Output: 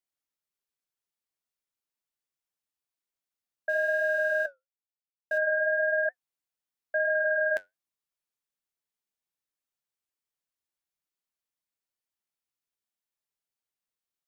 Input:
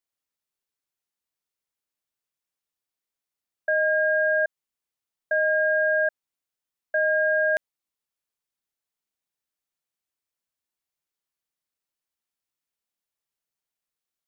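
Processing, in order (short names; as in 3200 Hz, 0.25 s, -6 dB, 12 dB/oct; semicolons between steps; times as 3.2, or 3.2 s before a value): 3.69–5.38 G.711 law mismatch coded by A; flange 0.98 Hz, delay 4.6 ms, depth 6.2 ms, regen -66%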